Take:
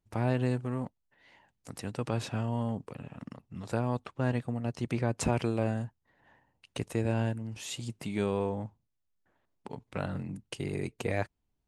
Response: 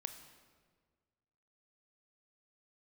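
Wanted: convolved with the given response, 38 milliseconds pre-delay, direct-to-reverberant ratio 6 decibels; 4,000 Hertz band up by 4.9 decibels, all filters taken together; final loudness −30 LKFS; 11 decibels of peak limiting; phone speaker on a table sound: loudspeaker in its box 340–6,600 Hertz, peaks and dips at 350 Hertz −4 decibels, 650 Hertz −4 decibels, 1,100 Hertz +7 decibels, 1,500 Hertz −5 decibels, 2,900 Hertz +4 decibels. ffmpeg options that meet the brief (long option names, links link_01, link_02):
-filter_complex "[0:a]equalizer=frequency=4000:width_type=o:gain=4,alimiter=limit=-24dB:level=0:latency=1,asplit=2[link_01][link_02];[1:a]atrim=start_sample=2205,adelay=38[link_03];[link_02][link_03]afir=irnorm=-1:irlink=0,volume=-3.5dB[link_04];[link_01][link_04]amix=inputs=2:normalize=0,highpass=frequency=340:width=0.5412,highpass=frequency=340:width=1.3066,equalizer=frequency=350:width_type=q:width=4:gain=-4,equalizer=frequency=650:width_type=q:width=4:gain=-4,equalizer=frequency=1100:width_type=q:width=4:gain=7,equalizer=frequency=1500:width_type=q:width=4:gain=-5,equalizer=frequency=2900:width_type=q:width=4:gain=4,lowpass=frequency=6600:width=0.5412,lowpass=frequency=6600:width=1.3066,volume=11.5dB"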